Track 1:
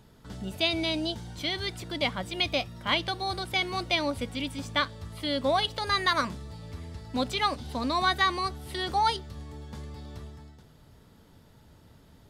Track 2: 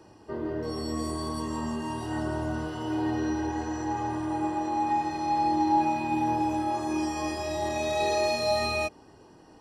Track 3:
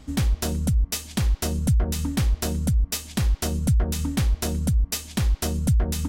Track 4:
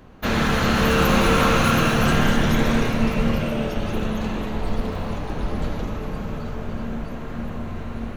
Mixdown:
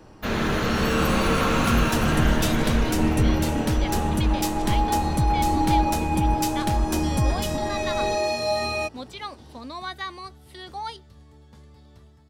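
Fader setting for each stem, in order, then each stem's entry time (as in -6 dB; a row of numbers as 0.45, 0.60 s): -8.5, +1.5, -2.5, -4.5 dB; 1.80, 0.00, 1.50, 0.00 s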